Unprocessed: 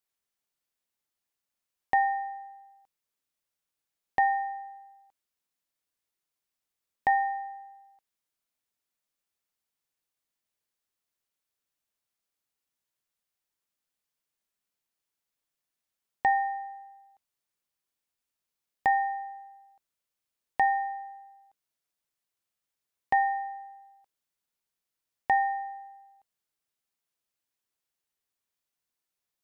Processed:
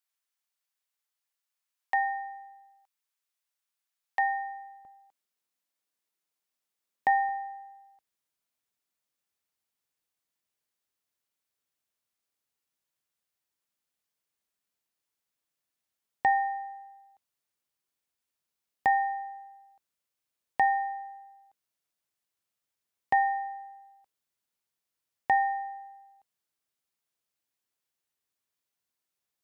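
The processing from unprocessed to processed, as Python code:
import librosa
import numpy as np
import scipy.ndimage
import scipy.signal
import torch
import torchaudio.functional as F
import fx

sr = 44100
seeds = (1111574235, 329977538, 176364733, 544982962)

y = fx.highpass(x, sr, hz=fx.steps((0.0, 850.0), (4.85, 170.0), (7.29, 47.0)), slope=12)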